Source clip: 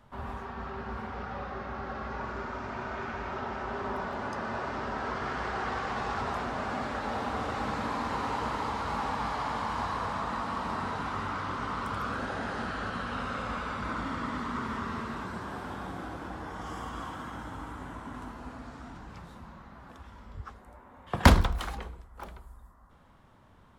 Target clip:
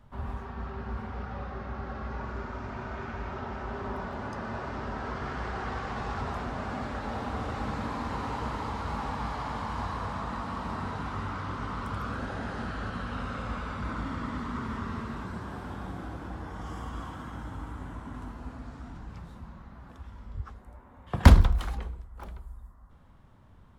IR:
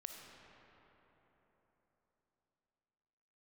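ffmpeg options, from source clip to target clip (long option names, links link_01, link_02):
-af "lowshelf=frequency=190:gain=10.5,volume=-3.5dB"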